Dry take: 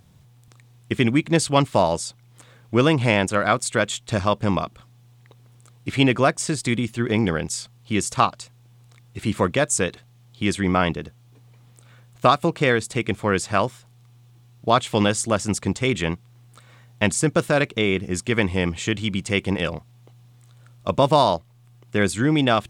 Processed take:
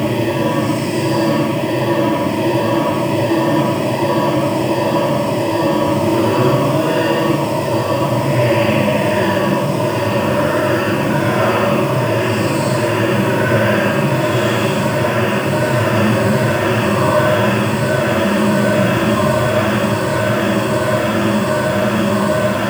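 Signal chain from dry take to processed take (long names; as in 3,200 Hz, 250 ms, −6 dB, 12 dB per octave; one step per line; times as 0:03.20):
treble cut that deepens with the level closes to 2,800 Hz, closed at −15 dBFS
EQ curve with evenly spaced ripples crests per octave 1.3, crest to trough 9 dB
bit reduction 6 bits
on a send: echo that builds up and dies away 103 ms, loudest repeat 8, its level −5 dB
on the sum: extreme stretch with random phases 7.2×, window 0.10 s, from 0:01.91
level −2 dB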